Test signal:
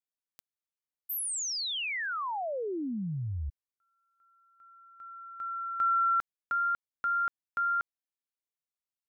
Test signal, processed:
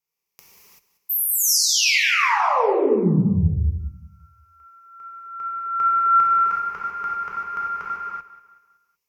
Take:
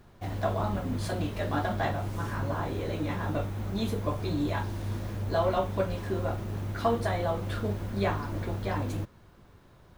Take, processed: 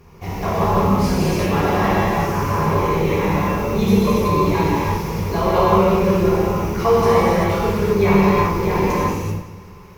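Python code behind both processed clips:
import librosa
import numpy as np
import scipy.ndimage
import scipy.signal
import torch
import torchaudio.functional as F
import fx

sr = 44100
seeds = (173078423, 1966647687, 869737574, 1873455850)

p1 = fx.ripple_eq(x, sr, per_octave=0.8, db=11)
p2 = p1 + fx.echo_feedback(p1, sr, ms=188, feedback_pct=43, wet_db=-15.5, dry=0)
p3 = fx.rev_gated(p2, sr, seeds[0], gate_ms=410, shape='flat', drr_db=-7.5)
y = F.gain(torch.from_numpy(p3), 5.0).numpy()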